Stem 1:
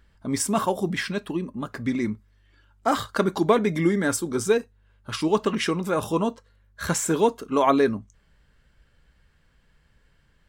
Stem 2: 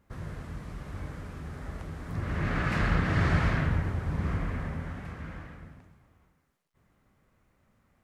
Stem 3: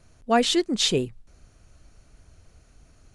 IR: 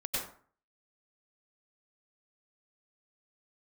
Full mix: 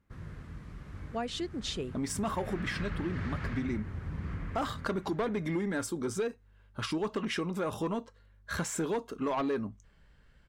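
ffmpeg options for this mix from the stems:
-filter_complex "[0:a]asoftclip=type=tanh:threshold=-16.5dB,adelay=1700,volume=-0.5dB[a];[1:a]equalizer=f=680:t=o:w=1.1:g=-7,volume=-5dB[b];[2:a]adelay=850,volume=-10dB[c];[a][b][c]amix=inputs=3:normalize=0,highshelf=f=6.1k:g=-7.5,acompressor=threshold=-33dB:ratio=2.5"

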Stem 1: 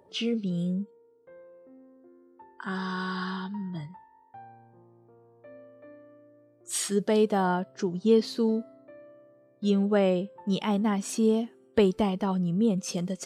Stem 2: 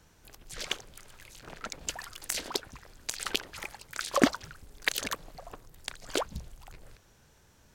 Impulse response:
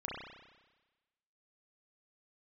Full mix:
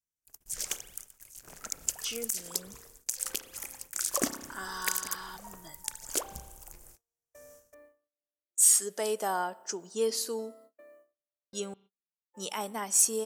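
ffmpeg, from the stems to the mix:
-filter_complex "[0:a]highpass=520,adelay=1900,volume=-3dB,asplit=3[a][b][c];[a]atrim=end=11.74,asetpts=PTS-STARTPTS,afade=t=out:st=11.736:d=0.004:c=hsin[d];[b]atrim=start=11.74:end=12.33,asetpts=PTS-STARTPTS,volume=0[e];[c]atrim=start=12.33,asetpts=PTS-STARTPTS,afade=t=in:d=0.004:c=hsin[f];[d][e][f]concat=n=3:v=0:a=1,asplit=2[g][h];[h]volume=-22.5dB[i];[1:a]volume=-8.5dB,asplit=2[j][k];[k]volume=-9.5dB[l];[2:a]atrim=start_sample=2205[m];[i][l]amix=inputs=2:normalize=0[n];[n][m]afir=irnorm=-1:irlink=0[o];[g][j][o]amix=inputs=3:normalize=0,agate=range=-37dB:threshold=-56dB:ratio=16:detection=peak,aexciter=amount=4.2:drive=9.2:freq=5.6k,alimiter=limit=-10.5dB:level=0:latency=1:release=484"

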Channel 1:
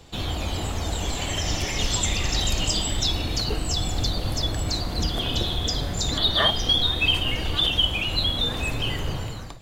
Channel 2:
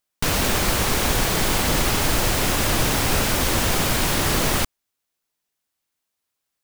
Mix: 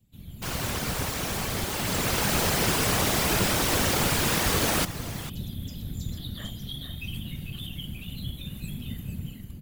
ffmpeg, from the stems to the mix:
-filter_complex "[0:a]firequalizer=gain_entry='entry(180,0);entry(270,-19);entry(890,-27);entry(2100,-16);entry(5400,-20);entry(12000,5)':delay=0.05:min_phase=1,volume=-4.5dB,asplit=2[a][b];[b]volume=-6.5dB[c];[1:a]adelay=200,volume=-5dB,afade=t=in:st=1.74:d=0.58:silence=0.473151,asplit=2[d][e];[e]volume=-14dB[f];[c][f]amix=inputs=2:normalize=0,aecho=0:1:447:1[g];[a][d][g]amix=inputs=3:normalize=0,highpass=86,dynaudnorm=f=160:g=5:m=8dB,afftfilt=real='hypot(re,im)*cos(2*PI*random(0))':imag='hypot(re,im)*sin(2*PI*random(1))':win_size=512:overlap=0.75"

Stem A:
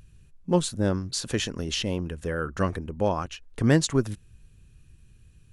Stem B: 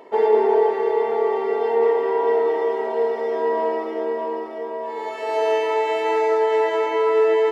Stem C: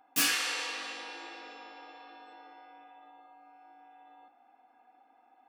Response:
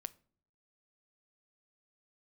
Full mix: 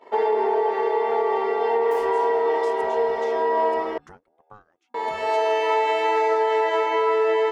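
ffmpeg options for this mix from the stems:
-filter_complex "[0:a]equalizer=f=390:t=o:w=0.82:g=-7,aeval=exprs='val(0)*sin(2*PI*430*n/s+430*0.5/1*sin(2*PI*1*n/s))':c=same,adelay=1500,volume=-9dB[a];[1:a]equalizer=f=4.1k:w=0.49:g=6.5,alimiter=limit=-12.5dB:level=0:latency=1:release=147,volume=-4dB,asplit=3[b][c][d];[b]atrim=end=3.98,asetpts=PTS-STARTPTS,afade=t=out:st=3.976:d=0.004:c=hsin[e];[c]atrim=start=3.98:end=4.94,asetpts=PTS-STARTPTS,volume=0[f];[d]atrim=start=4.94,asetpts=PTS-STARTPTS,afade=t=in:d=0.004:c=hsin[g];[e][f][g]concat=n=3:v=0:a=1[h];[2:a]acrossover=split=1800[i][j];[i]aeval=exprs='val(0)*(1-0.7/2+0.7/2*cos(2*PI*5.4*n/s))':c=same[k];[j]aeval=exprs='val(0)*(1-0.7/2-0.7/2*cos(2*PI*5.4*n/s))':c=same[l];[k][l]amix=inputs=2:normalize=0,adelay=1750,volume=-8dB[m];[a][m]amix=inputs=2:normalize=0,acompressor=threshold=-46dB:ratio=16,volume=0dB[n];[h][n]amix=inputs=2:normalize=0,agate=range=-17dB:threshold=-48dB:ratio=16:detection=peak,equalizer=f=960:w=0.75:g=6.5"

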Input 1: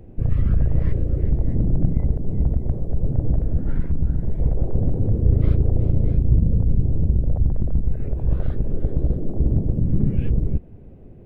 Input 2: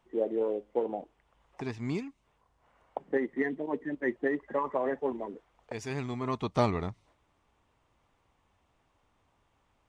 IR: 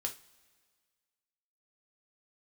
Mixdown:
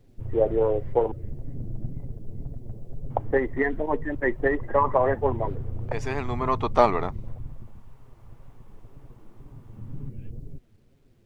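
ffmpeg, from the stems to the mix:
-filter_complex "[0:a]flanger=delay=7.1:depth=2.2:regen=-3:speed=2:shape=sinusoidal,volume=-3dB,afade=t=out:st=7.24:d=0.54:silence=0.266073,afade=t=in:st=9.66:d=0.26:silence=0.398107[a];[1:a]highpass=f=200:p=1,equalizer=f=890:w=0.35:g=13,adelay=200,volume=-2dB,asplit=3[b][c][d];[b]atrim=end=1.12,asetpts=PTS-STARTPTS,afade=t=out:st=1.116:d=0.004:c=hsin[e];[c]atrim=start=1.12:end=3.1,asetpts=PTS-STARTPTS,volume=0[f];[d]atrim=start=3.1,asetpts=PTS-STARTPTS,afade=t=in:d=0.004:c=hsin[g];[e][f][g]concat=n=3:v=0:a=1[h];[a][h]amix=inputs=2:normalize=0,acrusher=bits=11:mix=0:aa=0.000001"

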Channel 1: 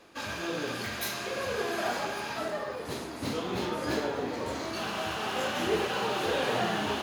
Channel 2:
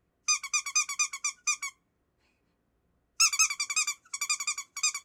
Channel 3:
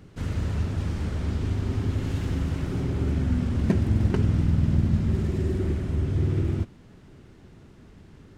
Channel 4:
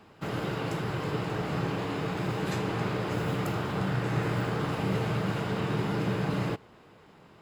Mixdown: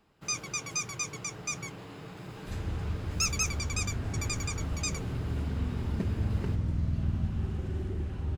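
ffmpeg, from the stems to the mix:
-filter_complex "[0:a]acrossover=split=2700[a][b];[b]acompressor=threshold=-44dB:ratio=4:attack=1:release=60[c];[a][c]amix=inputs=2:normalize=0,acompressor=threshold=-37dB:ratio=3,adelay=2200,volume=-15.5dB[d];[1:a]bandreject=f=7.9k:w=9.3,volume=-6dB[e];[2:a]adelay=2300,volume=-12dB[f];[3:a]highshelf=f=3.7k:g=7,volume=-14.5dB[g];[d][e][f][g]amix=inputs=4:normalize=0,lowshelf=f=81:g=10"

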